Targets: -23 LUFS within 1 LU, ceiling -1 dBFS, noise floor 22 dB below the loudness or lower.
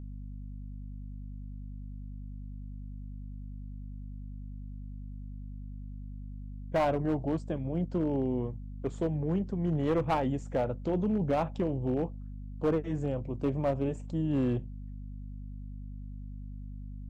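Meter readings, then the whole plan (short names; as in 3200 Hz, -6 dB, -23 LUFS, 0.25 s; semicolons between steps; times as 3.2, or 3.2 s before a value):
clipped 0.9%; flat tops at -22.0 dBFS; hum 50 Hz; harmonics up to 250 Hz; hum level -39 dBFS; loudness -31.5 LUFS; peak -22.0 dBFS; loudness target -23.0 LUFS
-> clip repair -22 dBFS; de-hum 50 Hz, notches 5; gain +8.5 dB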